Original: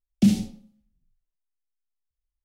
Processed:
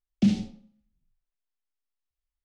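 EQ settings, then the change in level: air absorption 120 m; low shelf 430 Hz -4 dB; 0.0 dB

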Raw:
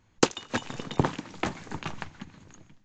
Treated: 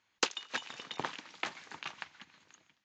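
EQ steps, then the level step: band-pass 4900 Hz, Q 0.52; air absorption 100 m; +1.5 dB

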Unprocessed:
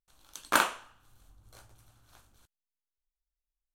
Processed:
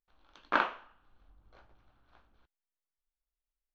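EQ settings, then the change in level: Gaussian blur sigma 2.7 samples; bell 110 Hz -11 dB 0.83 oct; -1.5 dB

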